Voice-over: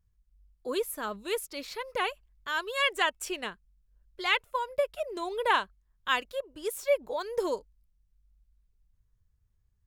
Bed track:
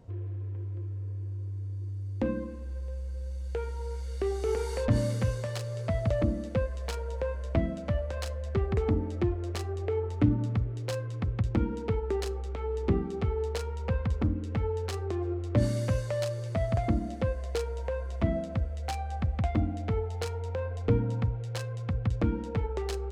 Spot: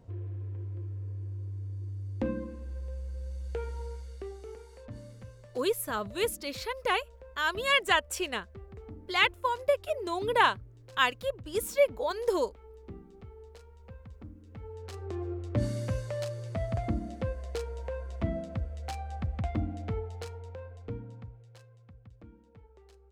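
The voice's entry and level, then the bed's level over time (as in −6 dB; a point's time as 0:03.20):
4.90 s, +2.0 dB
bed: 0:03.79 −2 dB
0:04.69 −19 dB
0:14.39 −19 dB
0:15.16 −4 dB
0:19.91 −4 dB
0:22.12 −25 dB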